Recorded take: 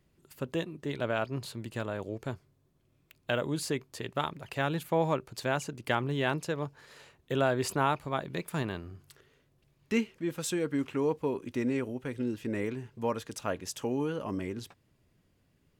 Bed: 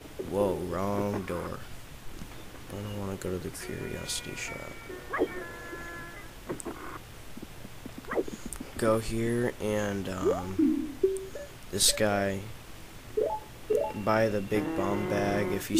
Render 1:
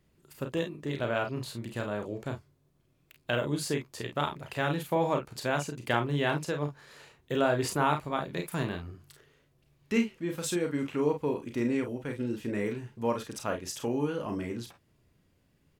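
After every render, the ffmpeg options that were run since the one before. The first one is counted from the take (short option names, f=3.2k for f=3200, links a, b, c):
-af "aecho=1:1:34|48:0.473|0.335"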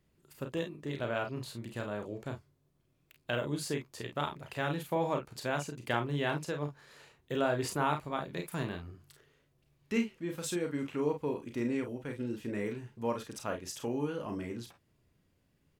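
-af "volume=-4dB"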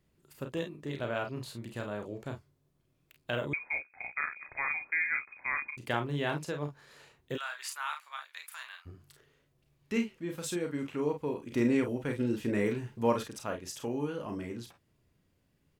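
-filter_complex "[0:a]asettb=1/sr,asplit=3[a][b][c];[a]atrim=end=3.534[d];[b]atrim=start=3.53:end=5.77,asetpts=PTS-STARTPTS,afade=t=in:d=0.004:c=qsin,afade=t=out:st=2.236:d=0.004:c=qsin,lowpass=f=2.2k:t=q:w=0.5098,lowpass=f=2.2k:t=q:w=0.6013,lowpass=f=2.2k:t=q:w=0.9,lowpass=f=2.2k:t=q:w=2.563,afreqshift=-2600[e];[c]atrim=start=5.766[f];[d][e]acrossfade=d=0.004:c1=hsin:c2=qsin[g];[g][f]acrossfade=d=0.004:c1=qsin:c2=hsin,asplit=3[h][i][j];[h]afade=t=out:st=7.36:d=0.02[k];[i]highpass=f=1.2k:w=0.5412,highpass=f=1.2k:w=1.3066,afade=t=in:st=7.36:d=0.02,afade=t=out:st=8.85:d=0.02[l];[j]afade=t=in:st=8.85:d=0.02[m];[k][l][m]amix=inputs=3:normalize=0,asplit=3[n][o][p];[n]atrim=end=11.522[q];[o]atrim=start=11.518:end=13.282,asetpts=PTS-STARTPTS,volume=6dB[r];[p]atrim=start=13.278[s];[q][r]acrossfade=d=0.004:c1=hsin:c2=hsin[t];[t][s]acrossfade=d=0.004:c1=hsin:c2=hsin"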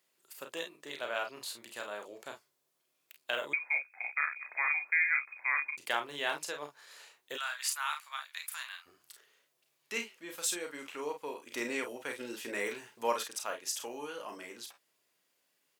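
-af "highpass=610,highshelf=f=3.2k:g=8.5"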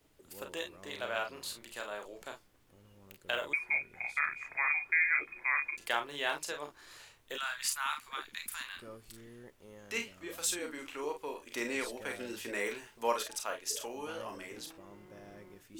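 -filter_complex "[1:a]volume=-24dB[a];[0:a][a]amix=inputs=2:normalize=0"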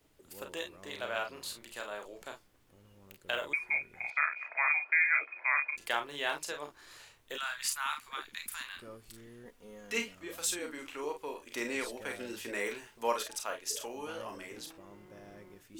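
-filter_complex "[0:a]asettb=1/sr,asplit=3[a][b][c];[a]atrim=end=4.104[d];[b]atrim=start=4.1:end=5.76,asetpts=PTS-STARTPTS,afade=t=in:d=0.004:c=qsin,afade=t=out:st=1.656:d=0.004:c=qsin,highpass=f=340:w=0.5412,highpass=f=340:w=1.3066,equalizer=f=370:t=q:w=4:g=-10,equalizer=f=640:t=q:w=4:g=9,equalizer=f=930:t=q:w=4:g=3,equalizer=f=1.4k:t=q:w=4:g=4,equalizer=f=2.6k:t=q:w=4:g=4,equalizer=f=3.6k:t=q:w=4:g=-8,lowpass=f=4.1k:w=0.5412,lowpass=f=4.1k:w=1.3066[e];[c]atrim=start=5.756[f];[d][e]acrossfade=d=0.004:c1=hsin:c2=qsin[g];[g][f]acrossfade=d=0.004:c1=qsin:c2=hsin,asettb=1/sr,asplit=3[h][i][j];[h]atrim=end=9.454[k];[i]atrim=start=9.45:end=10.15,asetpts=PTS-STARTPTS,afade=t=in:d=0.004:c=qsin,afade=t=out:st=0.696:d=0.004:c=qsin,aecho=1:1:4.2:0.78,atrim=end_sample=30870[l];[j]atrim=start=10.146[m];[k][l]acrossfade=d=0.004:c1=hsin:c2=qsin[n];[n][m]acrossfade=d=0.004:c1=qsin:c2=hsin"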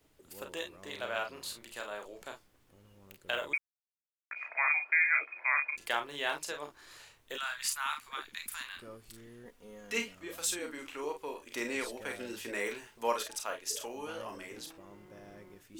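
-filter_complex "[0:a]asplit=3[a][b][c];[a]atrim=end=3.58,asetpts=PTS-STARTPTS,afade=t=out:st=3.576:d=0.004:c=hsin[d];[b]atrim=start=3.58:end=4.31,asetpts=PTS-STARTPTS,volume=0[e];[c]atrim=start=4.31,asetpts=PTS-STARTPTS,afade=t=in:d=0.004:c=hsin[f];[d][e][f]concat=n=3:v=0:a=1"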